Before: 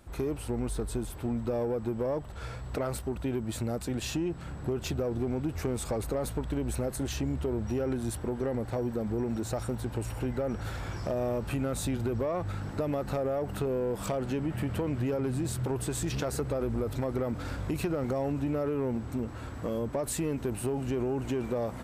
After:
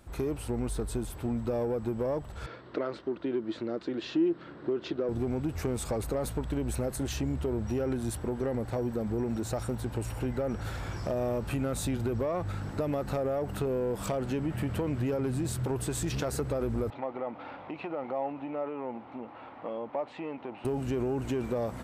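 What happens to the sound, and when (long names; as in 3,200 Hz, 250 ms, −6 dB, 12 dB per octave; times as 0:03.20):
0:02.46–0:05.09: loudspeaker in its box 270–4,100 Hz, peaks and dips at 330 Hz +9 dB, 790 Hz −7 dB, 2,500 Hz −5 dB
0:16.90–0:20.65: loudspeaker in its box 380–2,900 Hz, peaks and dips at 410 Hz −7 dB, 820 Hz +7 dB, 1,600 Hz −8 dB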